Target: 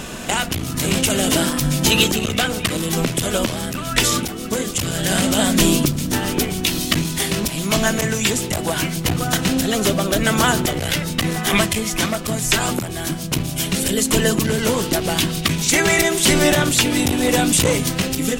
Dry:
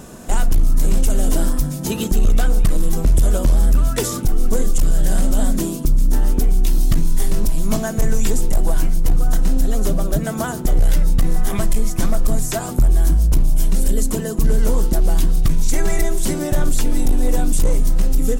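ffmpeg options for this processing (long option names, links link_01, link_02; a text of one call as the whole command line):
ffmpeg -i in.wav -filter_complex "[0:a]asplit=2[link_01][link_02];[link_02]acompressor=threshold=-20dB:ratio=12,volume=1dB[link_03];[link_01][link_03]amix=inputs=2:normalize=0,equalizer=frequency=2800:width=0.76:gain=13.5,afftfilt=real='re*lt(hypot(re,im),1.41)':imag='im*lt(hypot(re,im),1.41)':win_size=1024:overlap=0.75,dynaudnorm=framelen=200:gausssize=7:maxgain=11.5dB,volume=-1.5dB" out.wav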